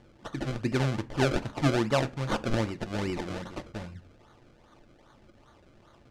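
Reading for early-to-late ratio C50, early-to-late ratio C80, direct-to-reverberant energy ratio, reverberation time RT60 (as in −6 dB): 20.5 dB, 25.0 dB, 8.5 dB, 0.40 s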